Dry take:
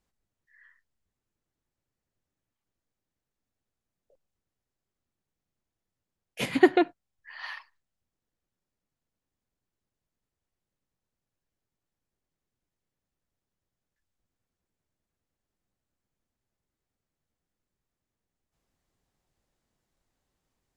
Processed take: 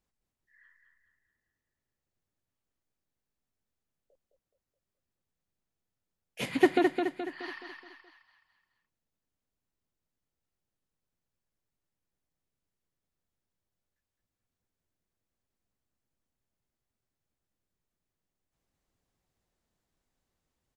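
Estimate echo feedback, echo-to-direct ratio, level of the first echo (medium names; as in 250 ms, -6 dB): 47%, -4.0 dB, -5.0 dB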